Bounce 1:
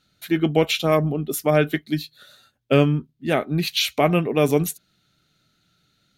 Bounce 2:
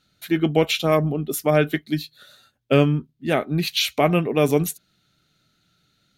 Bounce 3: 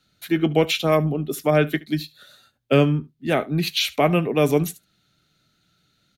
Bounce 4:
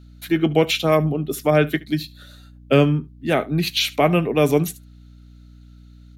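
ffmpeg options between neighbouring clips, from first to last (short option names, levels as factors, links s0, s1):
-af anull
-filter_complex "[0:a]aecho=1:1:72:0.0841,acrossover=split=160|690|5100[s0][s1][s2][s3];[s3]alimiter=limit=0.0708:level=0:latency=1:release=282[s4];[s0][s1][s2][s4]amix=inputs=4:normalize=0"
-af "aeval=exprs='val(0)+0.00562*(sin(2*PI*60*n/s)+sin(2*PI*2*60*n/s)/2+sin(2*PI*3*60*n/s)/3+sin(2*PI*4*60*n/s)/4+sin(2*PI*5*60*n/s)/5)':c=same,volume=1.19"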